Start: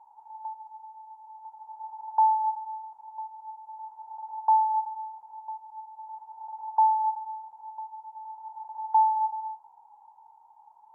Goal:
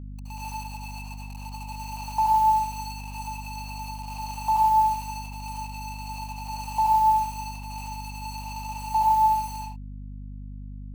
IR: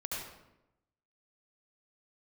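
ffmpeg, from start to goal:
-filter_complex "[0:a]acrusher=bits=6:mix=0:aa=0.000001[link_01];[1:a]atrim=start_sample=2205,afade=type=out:start_time=0.25:duration=0.01,atrim=end_sample=11466[link_02];[link_01][link_02]afir=irnorm=-1:irlink=0,aeval=exprs='val(0)+0.0112*(sin(2*PI*50*n/s)+sin(2*PI*2*50*n/s)/2+sin(2*PI*3*50*n/s)/3+sin(2*PI*4*50*n/s)/4+sin(2*PI*5*50*n/s)/5)':channel_layout=same,volume=2.5dB"

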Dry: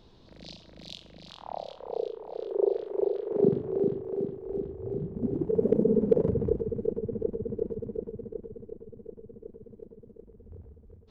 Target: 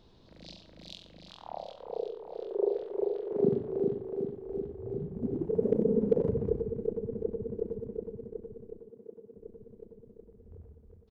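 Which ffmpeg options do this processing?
ffmpeg -i in.wav -filter_complex "[0:a]asettb=1/sr,asplit=3[link_01][link_02][link_03];[link_01]atrim=end=8.804[link_04];[link_02]atrim=start=8.8:end=9.37,asetpts=PTS-STARTPTS,afade=type=in:duration=0.004:curve=qsin,afade=type=out:start_time=0.566:duration=0.004:curve=qsin,highpass=210[link_05];[link_03]atrim=start=9.366[link_06];[link_04][link_05]acrossfade=duration=0.004:curve1=hsin:curve2=qsin[link_07];[link_07][link_06]acrossfade=duration=0.004:curve1=qsin:curve2=hsin,asplit=2[link_08][link_09];[link_09]adelay=93.29,volume=-11dB,highshelf=frequency=4000:gain=-2.1[link_10];[link_08][link_10]amix=inputs=2:normalize=0,volume=-3.5dB" out.wav

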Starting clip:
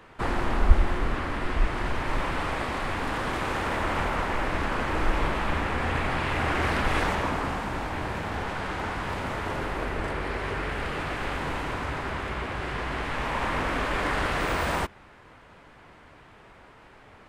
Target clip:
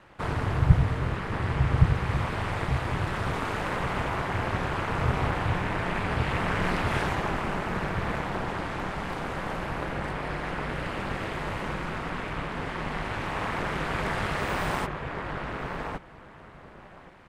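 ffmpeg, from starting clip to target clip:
ffmpeg -i in.wav -filter_complex "[0:a]asplit=2[link_01][link_02];[link_02]adelay=1117,lowpass=frequency=1800:poles=1,volume=-3dB,asplit=2[link_03][link_04];[link_04]adelay=1117,lowpass=frequency=1800:poles=1,volume=0.17,asplit=2[link_05][link_06];[link_06]adelay=1117,lowpass=frequency=1800:poles=1,volume=0.17[link_07];[link_01][link_03][link_05][link_07]amix=inputs=4:normalize=0,aeval=exprs='val(0)*sin(2*PI*100*n/s)':channel_layout=same" out.wav

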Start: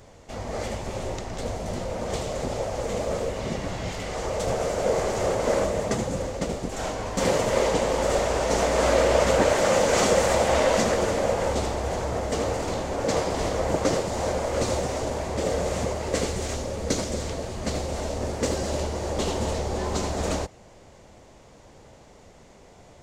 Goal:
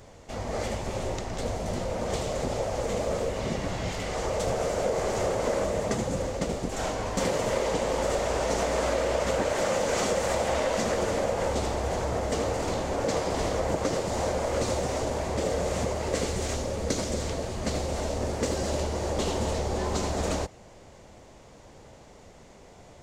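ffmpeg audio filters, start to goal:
ffmpeg -i in.wav -af "acompressor=threshold=-23dB:ratio=6" out.wav

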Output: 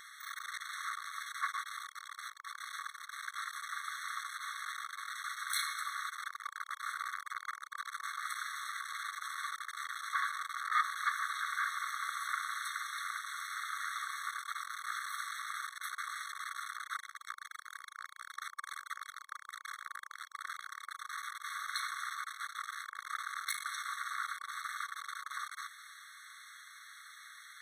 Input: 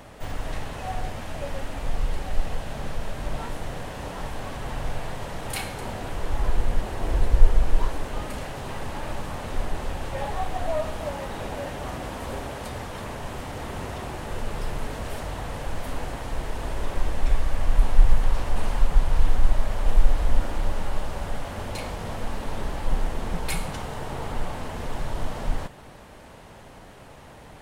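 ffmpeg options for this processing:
ffmpeg -i in.wav -af "lowshelf=frequency=670:width_type=q:width=3:gain=12,aeval=exprs='(tanh(10*val(0)+0.4)-tanh(0.4))/10':channel_layout=same,afftfilt=real='re*eq(mod(floor(b*sr/1024/1100),2),1)':imag='im*eq(mod(floor(b*sr/1024/1100),2),1)':win_size=1024:overlap=0.75,volume=6dB" out.wav

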